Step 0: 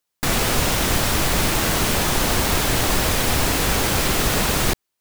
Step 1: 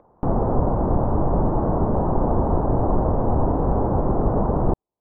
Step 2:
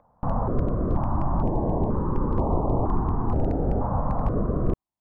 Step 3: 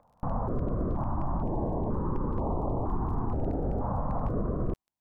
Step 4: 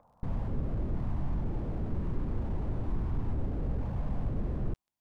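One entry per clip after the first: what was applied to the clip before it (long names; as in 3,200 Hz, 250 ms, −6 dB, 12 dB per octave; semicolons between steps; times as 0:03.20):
Butterworth low-pass 970 Hz 36 dB per octave; upward compression, threshold −33 dBFS; level +2.5 dB
dynamic equaliser 1,100 Hz, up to +6 dB, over −45 dBFS, Q 3.3; gain into a clipping stage and back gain 9.5 dB; notch on a step sequencer 2.1 Hz 370–1,600 Hz; level −3 dB
brickwall limiter −19 dBFS, peak gain reduction 6.5 dB; surface crackle 13 per second −49 dBFS; level −2.5 dB
slew-rate limiting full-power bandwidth 4.1 Hz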